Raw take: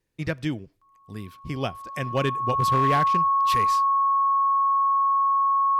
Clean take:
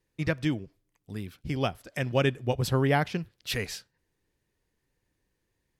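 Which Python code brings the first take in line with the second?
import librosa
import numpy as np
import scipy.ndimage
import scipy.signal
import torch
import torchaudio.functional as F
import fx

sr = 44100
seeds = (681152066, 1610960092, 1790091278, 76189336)

y = fx.fix_declip(x, sr, threshold_db=-15.5)
y = fx.notch(y, sr, hz=1100.0, q=30.0)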